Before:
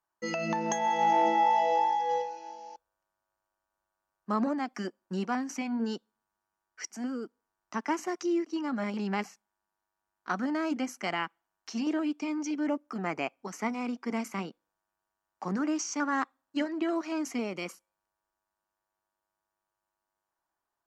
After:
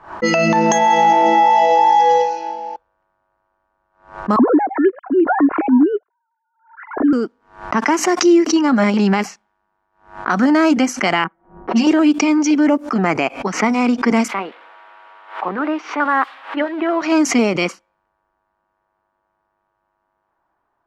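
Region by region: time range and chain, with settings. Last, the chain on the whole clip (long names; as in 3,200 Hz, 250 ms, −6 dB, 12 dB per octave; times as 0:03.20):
0:04.36–0:07.13: three sine waves on the formant tracks + low-pass filter 1,500 Hz 24 dB per octave + comb filter 2.9 ms, depth 36%
0:11.24–0:11.92: low-pass that shuts in the quiet parts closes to 330 Hz, open at −30 dBFS + comb filter 5.4 ms, depth 57%
0:14.28–0:17.02: spike at every zero crossing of −31 dBFS + high-pass filter 500 Hz + high-frequency loss of the air 490 metres
whole clip: low-pass that shuts in the quiet parts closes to 1,600 Hz, open at −27 dBFS; boost into a limiter +22.5 dB; background raised ahead of every attack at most 140 dB per second; level −4.5 dB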